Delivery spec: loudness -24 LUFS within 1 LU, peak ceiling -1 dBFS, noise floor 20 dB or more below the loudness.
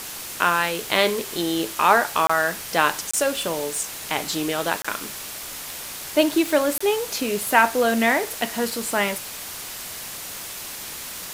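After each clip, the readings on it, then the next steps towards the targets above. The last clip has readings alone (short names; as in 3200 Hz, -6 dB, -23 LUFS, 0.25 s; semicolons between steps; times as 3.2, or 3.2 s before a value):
dropouts 4; longest dropout 25 ms; noise floor -35 dBFS; noise floor target -43 dBFS; loudness -23.0 LUFS; peak -1.5 dBFS; loudness target -24.0 LUFS
-> interpolate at 2.27/3.11/4.82/6.78, 25 ms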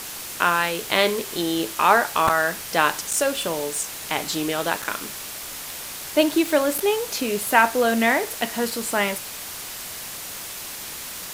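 dropouts 0; noise floor -35 dBFS; noise floor target -43 dBFS
-> noise print and reduce 8 dB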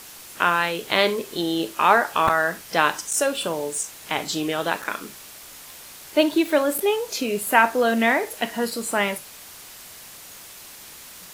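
noise floor -43 dBFS; loudness -22.0 LUFS; peak -1.5 dBFS; loudness target -24.0 LUFS
-> gain -2 dB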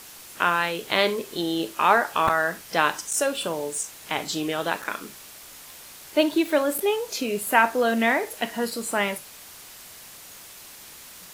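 loudness -24.0 LUFS; peak -3.5 dBFS; noise floor -45 dBFS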